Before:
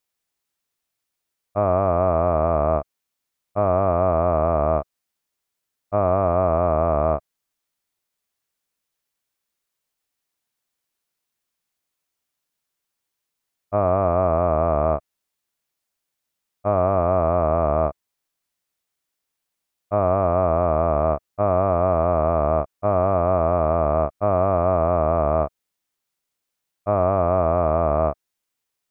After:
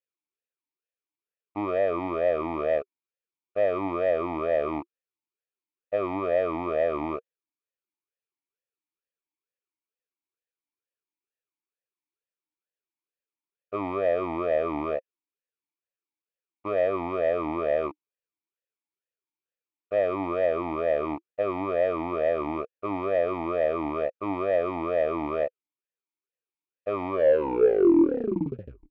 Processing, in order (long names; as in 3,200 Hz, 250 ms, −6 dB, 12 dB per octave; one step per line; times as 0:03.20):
turntable brake at the end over 1.81 s
leveller curve on the samples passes 2
formant filter swept between two vowels e-u 2.2 Hz
level +3 dB